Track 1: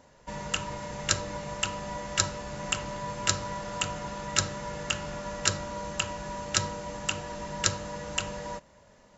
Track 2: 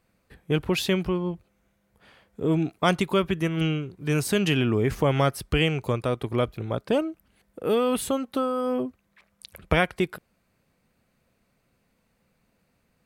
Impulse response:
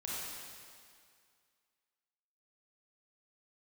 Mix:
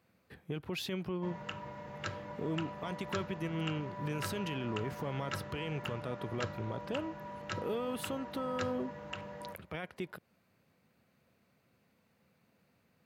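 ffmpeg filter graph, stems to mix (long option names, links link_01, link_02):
-filter_complex "[0:a]lowpass=2400,adelay=950,volume=-8dB[link_01];[1:a]equalizer=frequency=8800:width_type=o:width=0.89:gain=-6,acompressor=threshold=-33dB:ratio=4,alimiter=level_in=4dB:limit=-24dB:level=0:latency=1:release=15,volume=-4dB,volume=-1.5dB[link_02];[link_01][link_02]amix=inputs=2:normalize=0,highpass=frequency=80:width=0.5412,highpass=frequency=80:width=1.3066"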